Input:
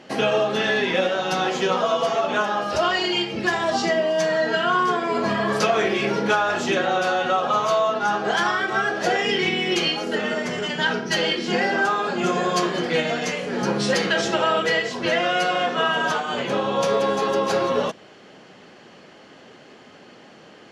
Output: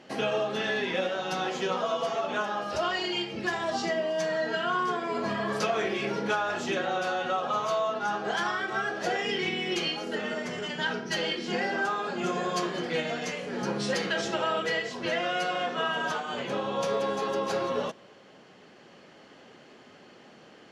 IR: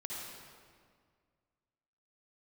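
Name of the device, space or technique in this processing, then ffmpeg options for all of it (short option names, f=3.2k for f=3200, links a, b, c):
ducked reverb: -filter_complex "[0:a]asplit=3[a][b][c];[1:a]atrim=start_sample=2205[d];[b][d]afir=irnorm=-1:irlink=0[e];[c]apad=whole_len=913410[f];[e][f]sidechaincompress=threshold=-39dB:ratio=8:attack=16:release=887,volume=-7dB[g];[a][g]amix=inputs=2:normalize=0,volume=-8dB"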